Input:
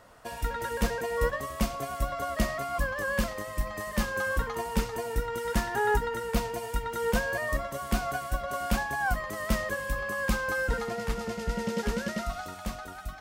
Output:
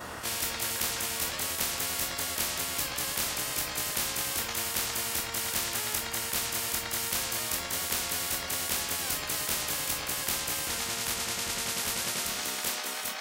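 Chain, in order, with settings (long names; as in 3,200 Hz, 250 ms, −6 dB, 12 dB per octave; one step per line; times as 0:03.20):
every overlapping window played backwards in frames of 52 ms
high-pass filter sweep 72 Hz → 650 Hz, 0:11.90–0:12.80
every bin compressed towards the loudest bin 10 to 1
level +5 dB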